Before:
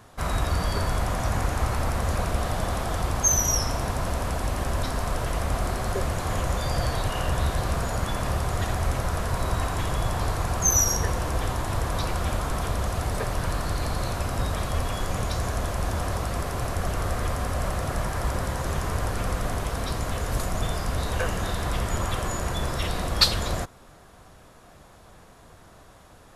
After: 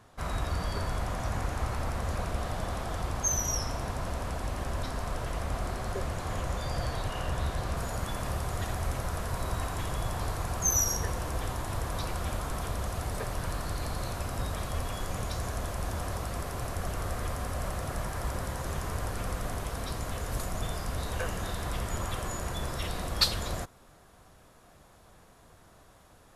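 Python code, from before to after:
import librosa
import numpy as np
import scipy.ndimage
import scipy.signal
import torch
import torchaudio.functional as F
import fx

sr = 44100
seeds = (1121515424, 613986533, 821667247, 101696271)

y = fx.high_shelf(x, sr, hz=10000.0, db=fx.steps((0.0, -5.0), (7.76, 5.0)))
y = y * 10.0 ** (-6.5 / 20.0)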